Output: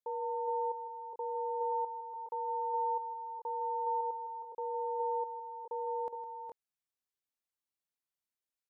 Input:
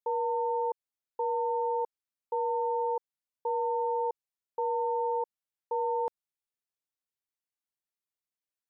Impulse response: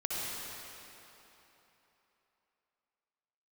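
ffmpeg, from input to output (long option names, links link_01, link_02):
-filter_complex "[0:a]asettb=1/sr,asplit=3[link_01][link_02][link_03];[link_01]atrim=end=1.724[link_04];[link_02]atrim=start=1.72:end=4.01,asetpts=PTS-STARTPTS,afade=type=in:duration=0.004:curve=qsin,afade=type=out:start_time=2.286:duration=0.004:curve=qsin,equalizer=frequency=970:width_type=o:width=1.4:gain=8.5[link_05];[link_03]atrim=start=4.006[link_06];[link_04][link_05]acrossfade=duration=0.004:curve1=hsin:curve2=qsin[link_07];[link_07][link_06]acrossfade=duration=0.004:curve1=qsin:curve2=hsin,alimiter=level_in=3dB:limit=-24dB:level=0:latency=1:release=300,volume=-3dB,aecho=1:1:159|415|439:0.224|0.501|0.335,volume=-4dB"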